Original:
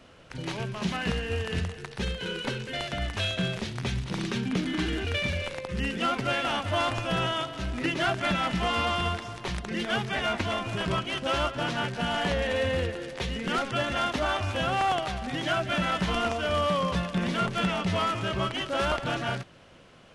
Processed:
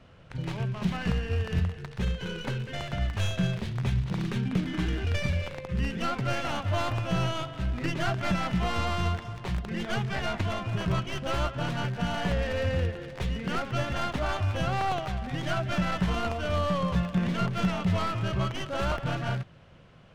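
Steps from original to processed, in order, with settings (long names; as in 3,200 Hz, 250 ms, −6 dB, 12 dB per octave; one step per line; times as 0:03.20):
stylus tracing distortion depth 0.18 ms
low-pass filter 3,100 Hz 6 dB per octave
low shelf with overshoot 200 Hz +6 dB, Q 1.5
level −2.5 dB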